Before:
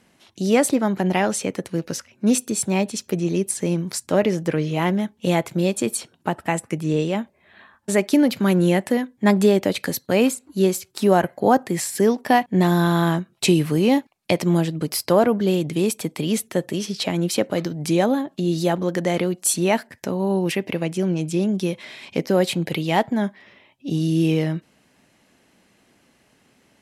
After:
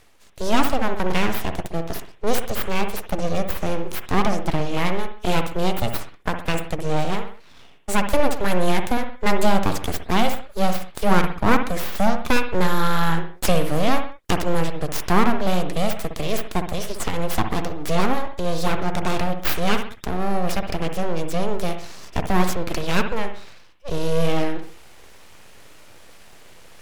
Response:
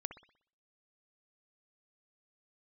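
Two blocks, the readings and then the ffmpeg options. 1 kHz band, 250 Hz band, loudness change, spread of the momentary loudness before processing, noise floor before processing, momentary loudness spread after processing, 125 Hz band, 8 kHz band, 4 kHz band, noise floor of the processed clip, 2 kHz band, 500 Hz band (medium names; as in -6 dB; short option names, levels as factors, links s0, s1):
+2.0 dB, -5.0 dB, -3.0 dB, 8 LU, -61 dBFS, 8 LU, -3.0 dB, -7.0 dB, 0.0 dB, -44 dBFS, +1.5 dB, -3.5 dB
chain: -filter_complex "[0:a]areverse,acompressor=mode=upward:threshold=0.0178:ratio=2.5,areverse,aeval=exprs='abs(val(0))':c=same[s0];[1:a]atrim=start_sample=2205,afade=t=out:st=0.25:d=0.01,atrim=end_sample=11466[s1];[s0][s1]afir=irnorm=-1:irlink=0,volume=1.58"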